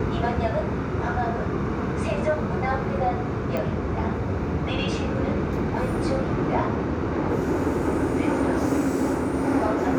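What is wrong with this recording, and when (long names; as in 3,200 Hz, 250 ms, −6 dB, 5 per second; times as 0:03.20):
0:03.57: click −16 dBFS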